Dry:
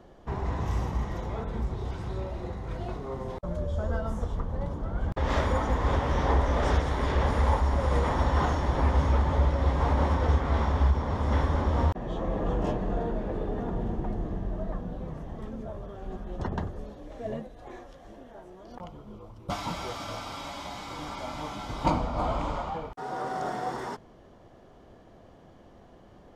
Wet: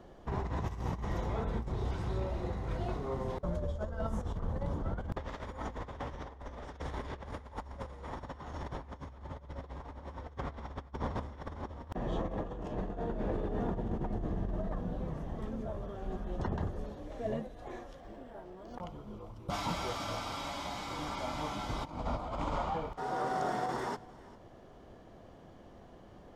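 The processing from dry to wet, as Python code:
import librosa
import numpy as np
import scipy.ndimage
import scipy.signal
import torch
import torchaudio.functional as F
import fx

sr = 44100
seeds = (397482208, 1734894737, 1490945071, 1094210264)

p1 = fx.over_compress(x, sr, threshold_db=-31.0, ratio=-0.5)
p2 = p1 + fx.echo_single(p1, sr, ms=398, db=-21.0, dry=0)
p3 = fx.resample_linear(p2, sr, factor=4, at=(18.0, 18.74))
y = F.gain(torch.from_numpy(p3), -5.0).numpy()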